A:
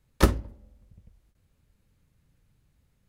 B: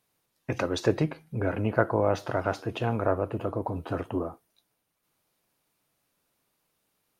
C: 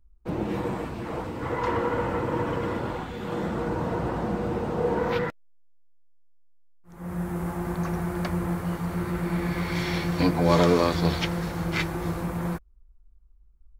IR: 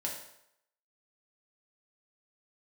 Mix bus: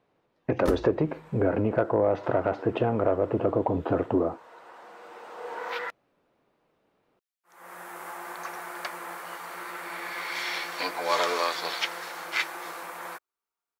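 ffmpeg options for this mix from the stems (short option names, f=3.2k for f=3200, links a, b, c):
-filter_complex "[0:a]adelay=450,volume=-12.5dB[a];[1:a]lowpass=2.7k,acompressor=threshold=-29dB:ratio=4,asoftclip=type=tanh:threshold=-22dB,volume=2.5dB,asplit=2[b][c];[2:a]highpass=1.4k,adelay=600,volume=1dB[d];[c]apad=whole_len=634847[e];[d][e]sidechaincompress=threshold=-44dB:ratio=12:attack=7.5:release=1500[f];[a][b][f]amix=inputs=3:normalize=0,equalizer=f=460:t=o:w=2.5:g=9.5"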